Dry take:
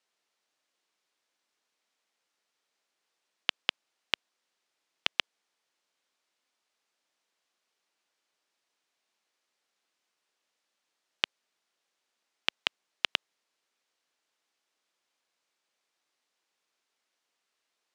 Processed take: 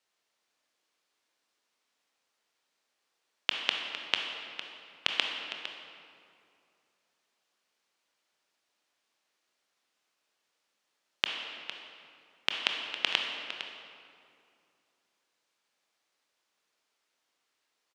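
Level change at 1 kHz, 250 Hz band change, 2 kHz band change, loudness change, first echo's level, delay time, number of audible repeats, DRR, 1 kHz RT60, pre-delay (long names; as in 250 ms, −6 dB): +2.5 dB, +3.0 dB, +2.5 dB, 0.0 dB, −12.0 dB, 457 ms, 1, 1.5 dB, 2.4 s, 20 ms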